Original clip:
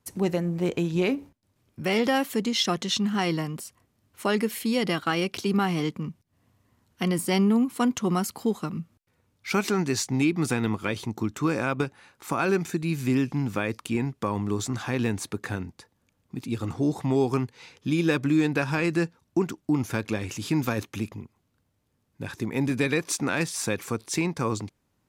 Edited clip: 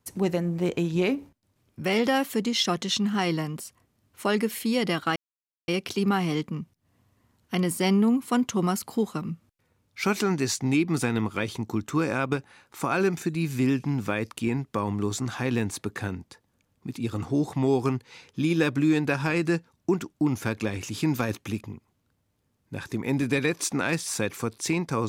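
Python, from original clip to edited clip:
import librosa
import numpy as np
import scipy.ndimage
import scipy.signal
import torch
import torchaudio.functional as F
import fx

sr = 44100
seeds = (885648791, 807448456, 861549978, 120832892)

y = fx.edit(x, sr, fx.insert_silence(at_s=5.16, length_s=0.52), tone=tone)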